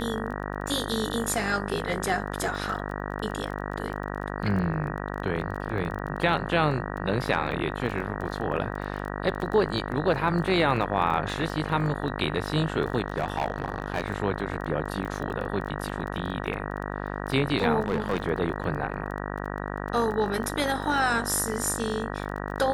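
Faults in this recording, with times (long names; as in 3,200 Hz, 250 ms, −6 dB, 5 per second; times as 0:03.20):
mains buzz 50 Hz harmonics 38 −33 dBFS
surface crackle 17 per second −33 dBFS
0:13.08–0:14.06: clipping −20 dBFS
0:17.82–0:18.24: clipping −20.5 dBFS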